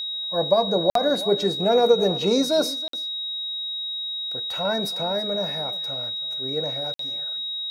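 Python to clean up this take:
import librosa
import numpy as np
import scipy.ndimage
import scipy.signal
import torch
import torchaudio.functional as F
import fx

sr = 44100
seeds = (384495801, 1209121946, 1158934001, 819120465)

y = fx.notch(x, sr, hz=3800.0, q=30.0)
y = fx.fix_interpolate(y, sr, at_s=(0.9, 2.88, 6.94), length_ms=53.0)
y = fx.fix_echo_inverse(y, sr, delay_ms=324, level_db=-17.5)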